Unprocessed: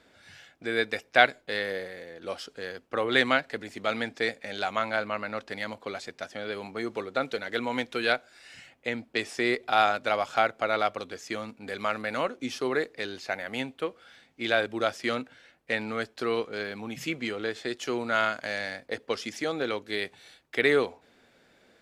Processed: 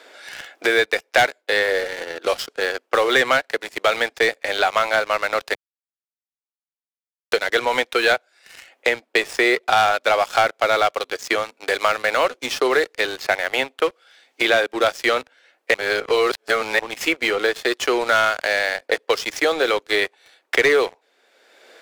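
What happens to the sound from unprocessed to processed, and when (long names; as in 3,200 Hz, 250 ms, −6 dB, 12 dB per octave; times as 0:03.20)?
0:05.55–0:07.32: silence
0:15.74–0:16.79: reverse
whole clip: high-pass filter 380 Hz 24 dB per octave; leveller curve on the samples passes 3; multiband upward and downward compressor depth 70%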